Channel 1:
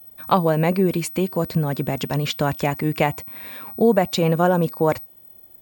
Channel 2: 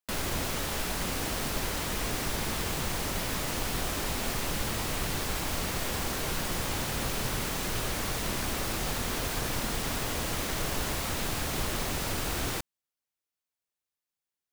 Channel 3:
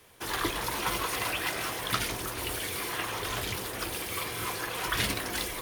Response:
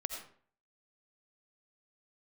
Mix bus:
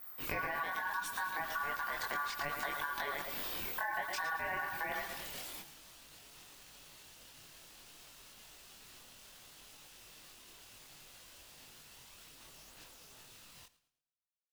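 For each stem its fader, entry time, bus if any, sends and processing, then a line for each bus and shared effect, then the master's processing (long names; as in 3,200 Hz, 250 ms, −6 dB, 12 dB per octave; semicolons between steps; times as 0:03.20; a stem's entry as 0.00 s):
+1.5 dB, 0.00 s, bus A, no send, echo send −11.5 dB, no processing
−10.0 dB, 1.05 s, no bus, no send, echo send −17.5 dB, elliptic high-pass filter 1,300 Hz; brickwall limiter −31 dBFS, peak gain reduction 8 dB
−4.5 dB, 0.00 s, bus A, no send, echo send −13.5 dB, high-pass filter 950 Hz; brickwall limiter −23.5 dBFS, peak gain reduction 9 dB
bus A: 0.0 dB, pitch vibrato 6.2 Hz 30 cents; brickwall limiter −13 dBFS, peak gain reduction 11 dB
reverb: not used
echo: repeating echo 110 ms, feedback 35%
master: ring modulation 1,300 Hz; multi-voice chorus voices 6, 0.65 Hz, delay 23 ms, depth 4.1 ms; downward compressor 6 to 1, threshold −35 dBFS, peak gain reduction 14 dB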